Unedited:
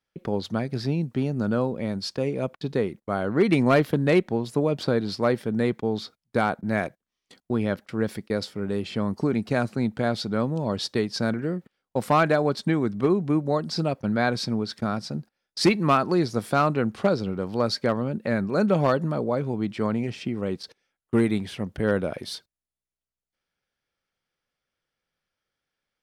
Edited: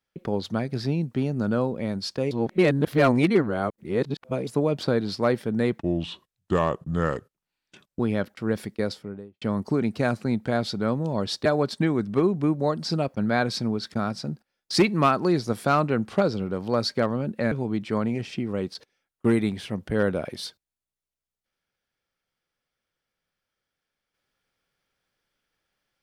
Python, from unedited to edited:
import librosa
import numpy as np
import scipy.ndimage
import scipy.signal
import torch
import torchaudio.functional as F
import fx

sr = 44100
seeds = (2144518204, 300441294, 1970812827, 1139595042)

y = fx.studio_fade_out(x, sr, start_s=8.31, length_s=0.62)
y = fx.edit(y, sr, fx.reverse_span(start_s=2.31, length_s=2.16),
    fx.speed_span(start_s=5.79, length_s=1.72, speed=0.78),
    fx.cut(start_s=10.97, length_s=1.35),
    fx.cut(start_s=18.38, length_s=1.02), tone=tone)